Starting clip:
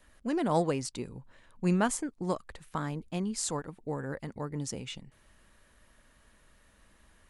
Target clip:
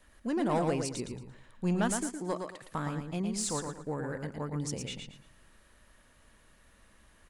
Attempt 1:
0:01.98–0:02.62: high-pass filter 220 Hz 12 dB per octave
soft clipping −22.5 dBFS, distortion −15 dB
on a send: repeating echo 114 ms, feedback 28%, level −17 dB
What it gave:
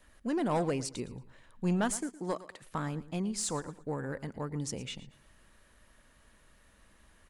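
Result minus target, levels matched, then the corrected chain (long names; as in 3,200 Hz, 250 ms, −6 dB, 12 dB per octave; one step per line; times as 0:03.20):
echo-to-direct −11.5 dB
0:01.98–0:02.62: high-pass filter 220 Hz 12 dB per octave
soft clipping −22.5 dBFS, distortion −15 dB
on a send: repeating echo 114 ms, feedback 28%, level −5.5 dB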